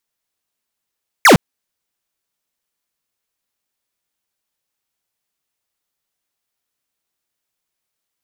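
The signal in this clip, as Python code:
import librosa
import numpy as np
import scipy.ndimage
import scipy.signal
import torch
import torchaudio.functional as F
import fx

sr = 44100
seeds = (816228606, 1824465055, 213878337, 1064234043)

y = fx.laser_zap(sr, level_db=-6.5, start_hz=2400.0, end_hz=130.0, length_s=0.11, wave='square')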